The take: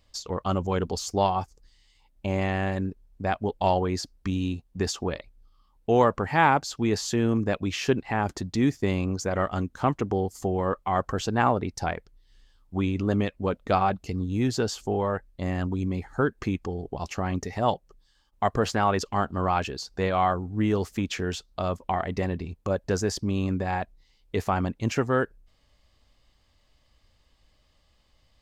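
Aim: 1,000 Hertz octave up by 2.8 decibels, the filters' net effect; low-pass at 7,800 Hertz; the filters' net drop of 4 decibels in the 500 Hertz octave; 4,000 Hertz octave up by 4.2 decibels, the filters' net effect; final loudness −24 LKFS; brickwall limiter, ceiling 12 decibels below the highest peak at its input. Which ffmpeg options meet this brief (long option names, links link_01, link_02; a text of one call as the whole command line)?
ffmpeg -i in.wav -af "lowpass=7800,equalizer=frequency=500:width_type=o:gain=-7,equalizer=frequency=1000:width_type=o:gain=6,equalizer=frequency=4000:width_type=o:gain=5.5,volume=5.5dB,alimiter=limit=-11dB:level=0:latency=1" out.wav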